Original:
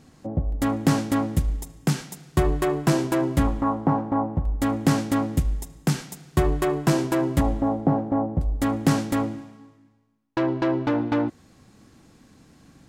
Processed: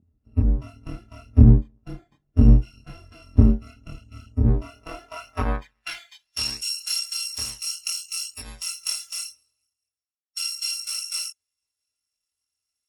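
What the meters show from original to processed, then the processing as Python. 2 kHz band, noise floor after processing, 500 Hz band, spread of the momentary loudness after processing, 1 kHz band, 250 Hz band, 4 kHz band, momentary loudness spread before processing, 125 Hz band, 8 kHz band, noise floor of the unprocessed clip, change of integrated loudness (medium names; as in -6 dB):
-5.0 dB, -85 dBFS, -11.0 dB, 22 LU, -13.0 dB, -4.5 dB, +9.5 dB, 6 LU, +3.0 dB, +6.5 dB, -56 dBFS, +1.0 dB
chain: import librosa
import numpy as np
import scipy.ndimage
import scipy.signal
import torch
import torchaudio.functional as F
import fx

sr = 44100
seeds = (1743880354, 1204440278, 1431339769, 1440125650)

p1 = fx.bit_reversed(x, sr, seeds[0], block=256)
p2 = fx.noise_reduce_blind(p1, sr, reduce_db=21)
p3 = fx.rider(p2, sr, range_db=3, speed_s=0.5)
p4 = p2 + (p3 * librosa.db_to_amplitude(1.0))
p5 = fx.chorus_voices(p4, sr, voices=2, hz=0.36, base_ms=25, depth_ms=3.8, mix_pct=45)
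p6 = fx.filter_sweep_bandpass(p5, sr, from_hz=210.0, to_hz=7000.0, start_s=4.37, end_s=6.62, q=1.4)
p7 = fx.riaa(p6, sr, side='playback')
y = p7 * librosa.db_to_amplitude(6.5)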